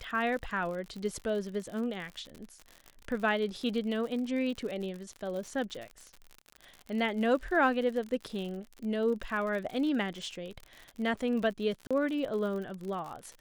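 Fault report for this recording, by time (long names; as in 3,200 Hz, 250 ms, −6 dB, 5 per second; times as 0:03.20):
surface crackle 66 per second −37 dBFS
0:11.87–0:11.91: drop-out 36 ms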